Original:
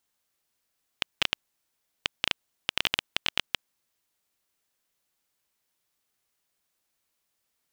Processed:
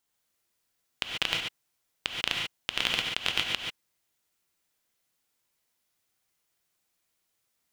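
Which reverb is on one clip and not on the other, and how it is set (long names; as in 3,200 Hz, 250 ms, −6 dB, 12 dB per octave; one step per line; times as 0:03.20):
reverb whose tail is shaped and stops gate 160 ms rising, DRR 0.5 dB
level −2 dB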